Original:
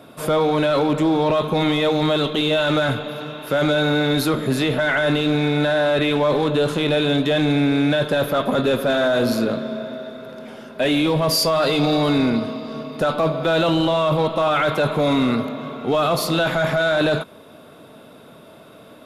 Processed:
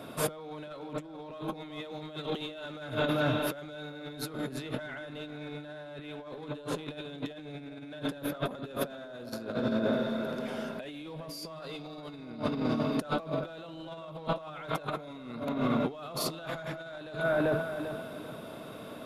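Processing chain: feedback echo behind a low-pass 392 ms, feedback 33%, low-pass 1.6 kHz, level -8 dB; compressor with a negative ratio -26 dBFS, ratio -0.5; trim -8 dB

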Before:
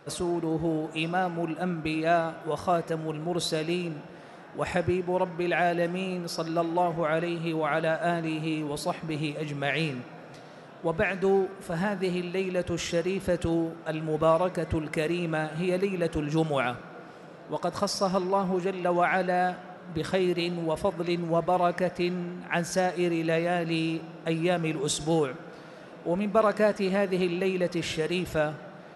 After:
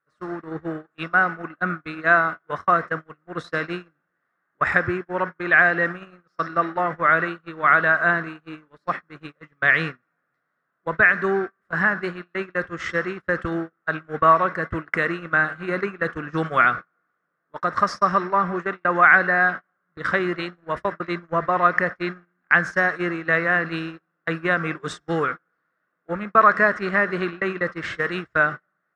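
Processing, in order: high-order bell 1.5 kHz +16 dB 1.1 oct; gate -26 dBFS, range -37 dB; distance through air 94 m; trim +1 dB

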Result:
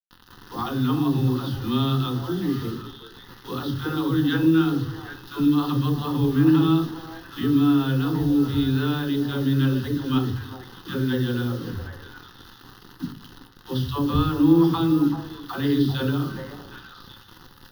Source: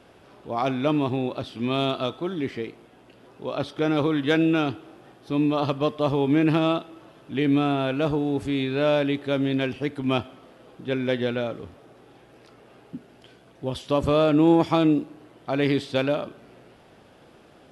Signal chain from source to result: bass shelf 250 Hz +9 dB; in parallel at +1 dB: compression 10:1, threshold -27 dBFS, peak gain reduction 17.5 dB; on the sum: phase dispersion lows, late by 121 ms, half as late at 400 Hz; word length cut 6-bit, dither none; static phaser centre 2.3 kHz, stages 6; repeats whose band climbs or falls 382 ms, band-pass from 650 Hz, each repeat 1.4 oct, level -5.5 dB; on a send at -6 dB: reverberation RT60 0.40 s, pre-delay 3 ms; on the sum: trim -3 dB

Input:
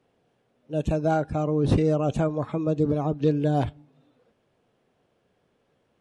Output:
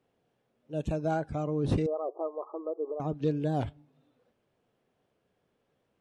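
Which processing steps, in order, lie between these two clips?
1.86–3.00 s: brick-wall FIR band-pass 320–1300 Hz; warped record 78 rpm, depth 100 cents; trim -6.5 dB

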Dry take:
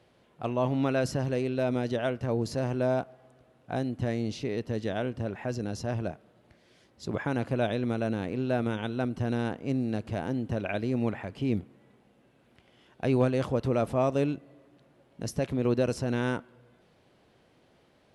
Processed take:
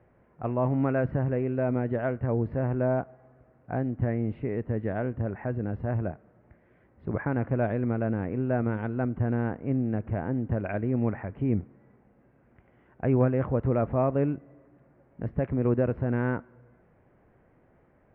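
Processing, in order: steep low-pass 2.1 kHz 36 dB/octave; bass shelf 92 Hz +11 dB

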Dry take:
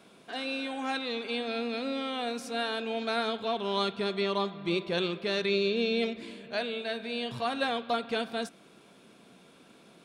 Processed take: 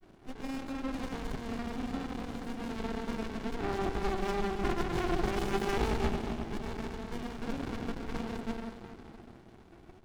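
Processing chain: steep high-pass 150 Hz 48 dB/octave; small resonant body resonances 360/1100/2600 Hz, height 17 dB, ringing for 45 ms; wavefolder -16.5 dBFS; granulator, pitch spread up and down by 0 st; multi-head delay 93 ms, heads first and third, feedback 68%, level -18.5 dB; plate-style reverb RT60 2.7 s, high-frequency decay 0.55×, pre-delay 115 ms, DRR 5 dB; sliding maximum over 65 samples; trim -3 dB

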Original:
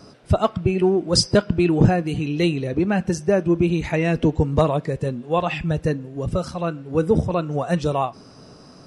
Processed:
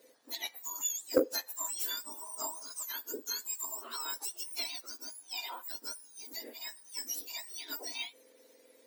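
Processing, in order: spectrum inverted on a logarithmic axis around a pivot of 1.6 kHz; Chebyshev shaper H 3 -15 dB, 5 -31 dB, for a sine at -3 dBFS; trim -8.5 dB

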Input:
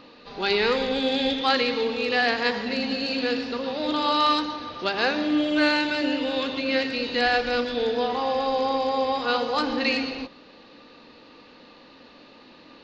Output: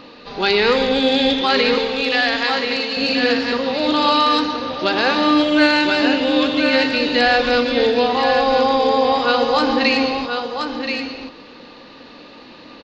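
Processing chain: 1.78–2.97 s: high-pass 1 kHz 6 dB/octave; delay 1027 ms -7.5 dB; loudness maximiser +12.5 dB; trim -4.5 dB

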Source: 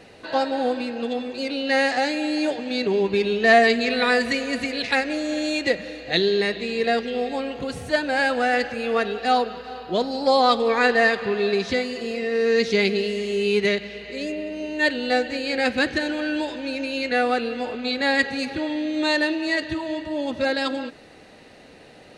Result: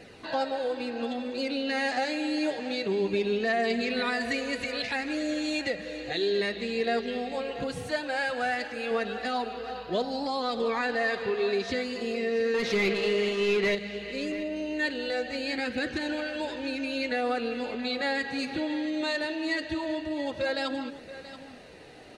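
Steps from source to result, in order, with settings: in parallel at +1 dB: compression, threshold -30 dBFS, peak gain reduction 18 dB; 7.87–8.91 s: on the sum: bass shelf 410 Hz -7.5 dB; delay 157 ms -20.5 dB; 12.54–13.75 s: overdrive pedal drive 21 dB, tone 1.7 kHz, clips at -3.5 dBFS; peak limiter -11 dBFS, peak gain reduction 8 dB; flange 0.19 Hz, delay 0.4 ms, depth 6.2 ms, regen -48%; on a send: delay 681 ms -14.5 dB; on the sum: trim -4.5 dB

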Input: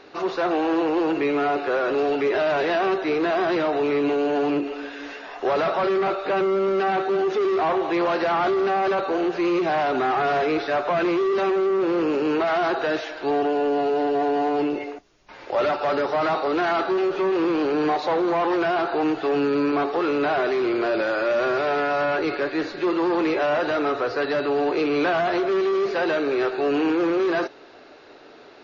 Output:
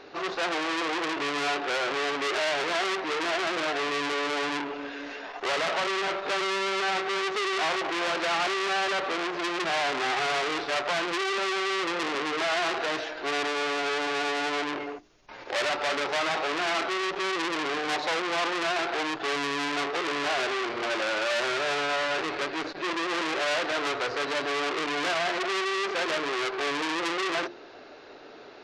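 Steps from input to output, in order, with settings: hum notches 50/100/150/200/250/300/350 Hz; transformer saturation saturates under 3.4 kHz

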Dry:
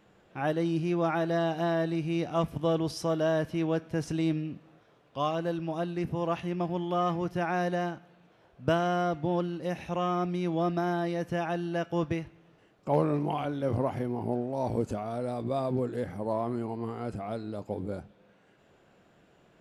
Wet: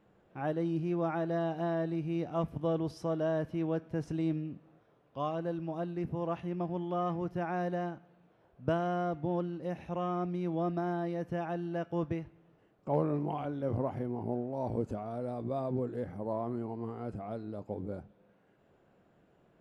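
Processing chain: treble shelf 2 kHz -11.5 dB; trim -3.5 dB

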